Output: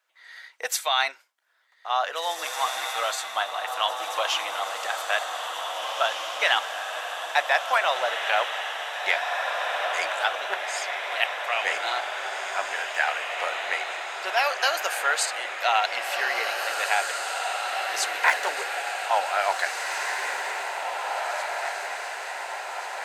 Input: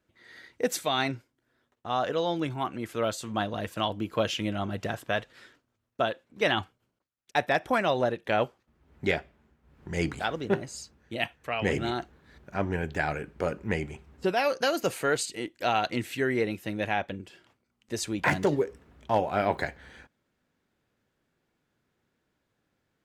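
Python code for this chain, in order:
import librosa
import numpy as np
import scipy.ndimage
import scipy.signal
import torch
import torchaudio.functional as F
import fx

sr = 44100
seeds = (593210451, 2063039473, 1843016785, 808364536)

p1 = scipy.signal.sosfilt(scipy.signal.butter(4, 750.0, 'highpass', fs=sr, output='sos'), x)
p2 = p1 + fx.echo_diffused(p1, sr, ms=1946, feedback_pct=63, wet_db=-3.5, dry=0)
y = p2 * librosa.db_to_amplitude(6.0)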